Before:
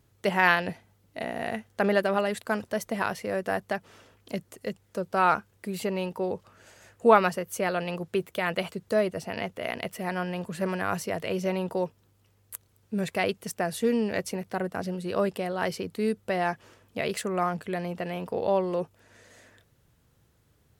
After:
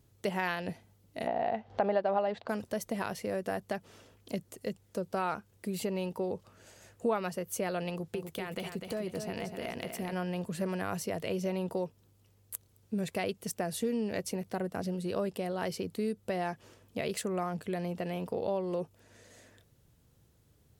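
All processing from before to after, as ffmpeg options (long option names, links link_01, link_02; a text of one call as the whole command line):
ffmpeg -i in.wav -filter_complex "[0:a]asettb=1/sr,asplit=3[link_01][link_02][link_03];[link_01]atrim=end=1.274[link_04];[link_02]atrim=start=1.27:end=2.49,asetpts=PTS-STARTPTS,afade=type=in:duration=0.004:curve=qsin,afade=type=out:start_time=1.216:duration=0.004:curve=qsin,lowpass=frequency=4500:width=0.5412,lowpass=frequency=4500:width=1.3066,acompressor=mode=upward:threshold=-39dB:ratio=2.5:attack=3.2:release=140:knee=2.83:detection=peak,equalizer=frequency=770:width_type=o:width=1.1:gain=14.5[link_05];[link_03]atrim=start=2.486[link_06];[link_04][link_05]acrossfade=duration=0.004:curve1=hsin:curve2=qsin[link_07];[link_07][link_06]acrossfade=duration=0.004:curve1=qsin:curve2=hsin,asettb=1/sr,asplit=3[link_08][link_09][link_10];[link_08]atrim=end=7.894[link_11];[link_09]atrim=start=7.89:end=10.13,asetpts=PTS-STARTPTS,afade=type=in:duration=0.004:curve=qsin,afade=type=out:start_time=2.236:duration=0.004:curve=qsin,bandreject=frequency=590:width=9,acompressor=threshold=-30dB:ratio=5:attack=3.2:release=140:knee=1:detection=peak,aecho=1:1:249|498|747|996:0.447|0.17|0.0645|0.0245,atrim=end_sample=98784[link_12];[link_10]atrim=start=10.126[link_13];[link_11][link_12]acrossfade=duration=0.004:curve1=hsin:curve2=qsin[link_14];[link_14][link_13]acrossfade=duration=0.004:curve1=qsin:curve2=hsin,equalizer=frequency=1500:width=0.65:gain=-6,acompressor=threshold=-31dB:ratio=2.5" out.wav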